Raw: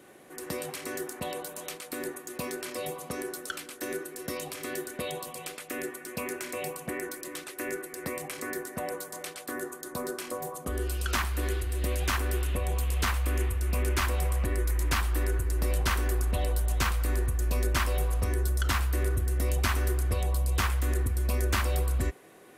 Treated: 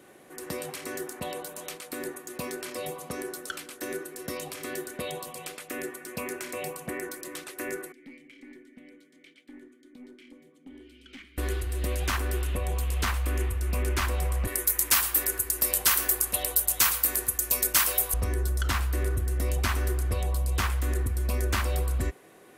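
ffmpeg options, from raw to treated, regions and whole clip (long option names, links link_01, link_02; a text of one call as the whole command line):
ffmpeg -i in.wav -filter_complex "[0:a]asettb=1/sr,asplit=3[link_01][link_02][link_03];[link_01]atrim=end=7.924[link_04];[link_02]atrim=start=7.92:end=11.38,asetpts=PTS-STARTPTS,afade=type=in:duration=0.004:curve=qsin,afade=type=out:start_time=3.456:duration=0.004:curve=qsin,asplit=3[link_05][link_06][link_07];[link_05]bandpass=frequency=270:width_type=q:width=8,volume=0dB[link_08];[link_06]bandpass=frequency=2290:width_type=q:width=8,volume=-6dB[link_09];[link_07]bandpass=frequency=3010:width_type=q:width=8,volume=-9dB[link_10];[link_08][link_09][link_10]amix=inputs=3:normalize=0,bandreject=frequency=50:width_type=h:width=6,bandreject=frequency=100:width_type=h:width=6,bandreject=frequency=150:width_type=h:width=6,aeval=exprs='(tanh(89.1*val(0)+0.15)-tanh(0.15))/89.1':channel_layout=same[link_11];[link_03]atrim=start=11.376[link_12];[link_04][link_11]acrossfade=duration=0.004:curve1=hsin:curve2=qsin[link_13];[link_13][link_12]acrossfade=duration=0.004:curve1=qsin:curve2=hsin,asettb=1/sr,asplit=3[link_14][link_15][link_16];[link_14]atrim=end=14.474[link_17];[link_15]atrim=start=14.47:end=18.14,asetpts=PTS-STARTPTS,afade=type=in:duration=0.004:curve=qsin,afade=type=out:start_time=3.666:duration=0.004:curve=qsin,aemphasis=mode=production:type=riaa,aecho=1:1:112:0.158,atrim=end_sample=161847[link_18];[link_16]atrim=start=18.136[link_19];[link_17][link_18]acrossfade=duration=0.004:curve1=hsin:curve2=qsin[link_20];[link_20][link_19]acrossfade=duration=0.004:curve1=qsin:curve2=hsin" out.wav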